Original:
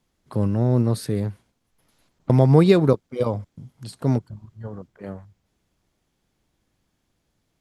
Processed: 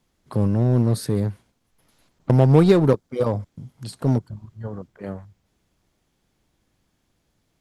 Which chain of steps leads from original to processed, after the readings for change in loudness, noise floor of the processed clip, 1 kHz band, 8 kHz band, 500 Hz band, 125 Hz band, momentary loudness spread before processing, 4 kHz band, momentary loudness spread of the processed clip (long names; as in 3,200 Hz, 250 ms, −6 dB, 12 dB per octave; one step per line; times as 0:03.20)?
+0.5 dB, −71 dBFS, +0.5 dB, can't be measured, +0.5 dB, +1.0 dB, 23 LU, −0.5 dB, 21 LU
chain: dynamic equaliser 2,600 Hz, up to −6 dB, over −46 dBFS, Q 1.5
in parallel at −9.5 dB: wave folding −18.5 dBFS